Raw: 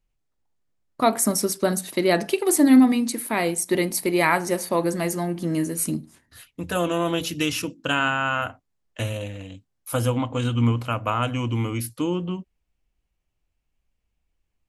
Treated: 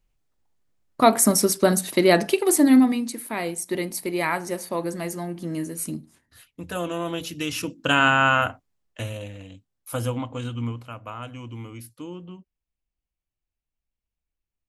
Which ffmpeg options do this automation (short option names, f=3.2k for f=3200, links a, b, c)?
-af "volume=14.5dB,afade=t=out:st=2.03:d=1.08:silence=0.375837,afade=t=in:st=7.44:d=0.79:silence=0.281838,afade=t=out:st=8.23:d=0.79:silence=0.316228,afade=t=out:st=10.09:d=0.79:silence=0.398107"